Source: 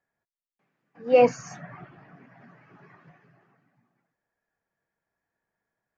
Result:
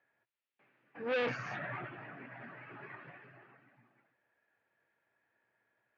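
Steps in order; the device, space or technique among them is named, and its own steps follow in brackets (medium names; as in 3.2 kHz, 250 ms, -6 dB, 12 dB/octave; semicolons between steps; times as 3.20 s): guitar amplifier (valve stage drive 36 dB, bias 0.3; tone controls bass -12 dB, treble -13 dB; cabinet simulation 86–4200 Hz, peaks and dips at 120 Hz +9 dB, 170 Hz -7 dB, 450 Hz -4 dB, 730 Hz -6 dB, 1.1 kHz -5 dB, 2.6 kHz +4 dB); trim +9 dB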